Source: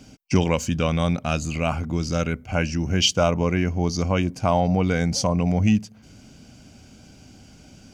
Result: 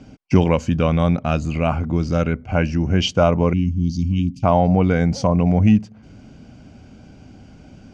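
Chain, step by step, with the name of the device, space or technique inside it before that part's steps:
0:03.53–0:04.43: elliptic band-stop filter 260–2,900 Hz, stop band 40 dB
through cloth (low-pass filter 8,700 Hz 12 dB per octave; high-shelf EQ 3,500 Hz −17 dB)
level +5 dB

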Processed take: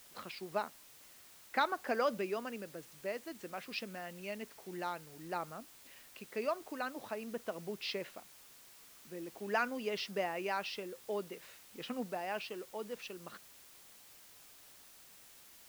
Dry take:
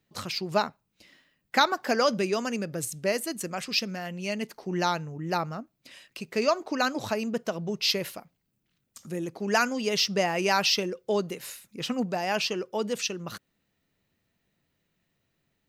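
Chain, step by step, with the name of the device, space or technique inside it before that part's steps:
shortwave radio (band-pass filter 250–2,800 Hz; amplitude tremolo 0.51 Hz, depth 40%; white noise bed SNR 17 dB)
level −8 dB

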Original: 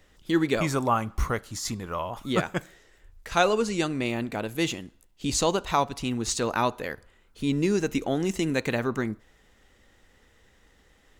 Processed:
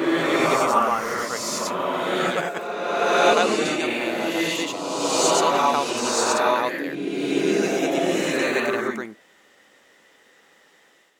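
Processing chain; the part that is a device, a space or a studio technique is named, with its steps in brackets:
ghost voice (reversed playback; convolution reverb RT60 2.6 s, pre-delay 83 ms, DRR −7 dB; reversed playback; high-pass filter 380 Hz 12 dB per octave)

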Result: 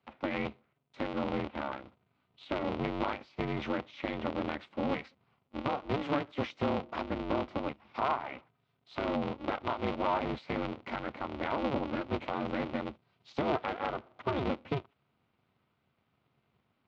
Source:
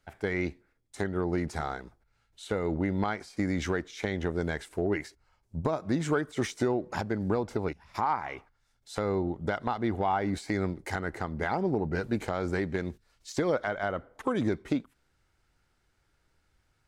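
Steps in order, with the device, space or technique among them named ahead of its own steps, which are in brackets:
0:01.08–0:01.82: Butterworth low-pass 3,400 Hz 48 dB per octave
ring modulator pedal into a guitar cabinet (ring modulator with a square carrier 140 Hz; loudspeaker in its box 100–3,500 Hz, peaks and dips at 170 Hz −6 dB, 450 Hz −5 dB, 1,700 Hz −9 dB)
level −1.5 dB

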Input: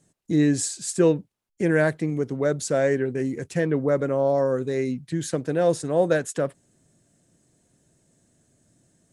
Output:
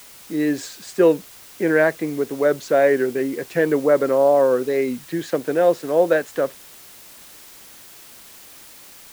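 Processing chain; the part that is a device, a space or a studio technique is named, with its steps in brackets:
dictaphone (band-pass filter 320–3,100 Hz; automatic gain control gain up to 11.5 dB; tape wow and flutter; white noise bed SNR 23 dB)
level −3 dB

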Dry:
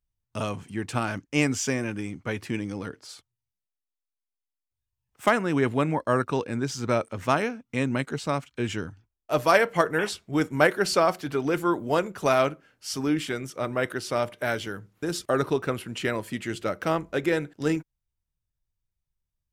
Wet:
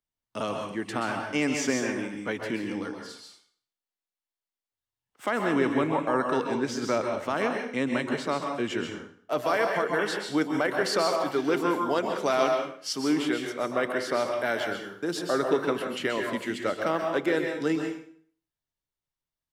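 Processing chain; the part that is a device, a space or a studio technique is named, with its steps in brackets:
DJ mixer with the lows and highs turned down (three-way crossover with the lows and the highs turned down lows −23 dB, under 230 Hz, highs −14 dB, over 3,900 Hz; brickwall limiter −16.5 dBFS, peak gain reduction 10.5 dB)
bass and treble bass +6 dB, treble +8 dB
dense smooth reverb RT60 0.52 s, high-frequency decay 0.95×, pre-delay 115 ms, DRR 2.5 dB
0:11.29–0:12.93: dynamic equaliser 4,900 Hz, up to +5 dB, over −46 dBFS, Q 1
notch filter 2,500 Hz, Q 14

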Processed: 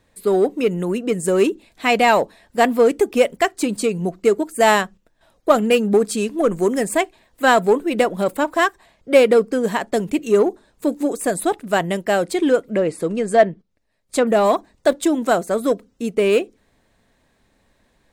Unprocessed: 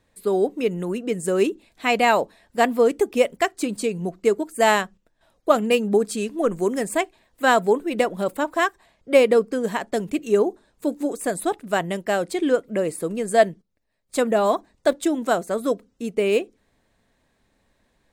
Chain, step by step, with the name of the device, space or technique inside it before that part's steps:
0:12.68–0:14.27: treble cut that deepens with the level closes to 2,600 Hz, closed at −16.5 dBFS
parallel distortion (in parallel at −7 dB: hard clipping −19.5 dBFS, distortion −7 dB)
on the sum: level +1.5 dB

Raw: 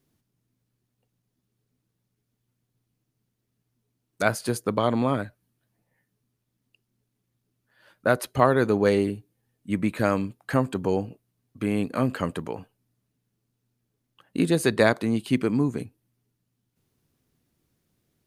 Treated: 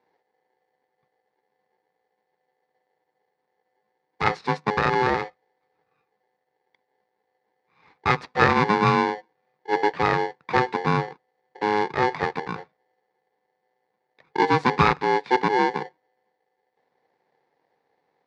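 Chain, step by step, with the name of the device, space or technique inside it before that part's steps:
ring modulator pedal into a guitar cabinet (ring modulator with a square carrier 630 Hz; loudspeaker in its box 100–4,200 Hz, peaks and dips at 150 Hz +8 dB, 440 Hz +5 dB, 860 Hz +4 dB, 1,800 Hz +4 dB, 3,100 Hz −10 dB)

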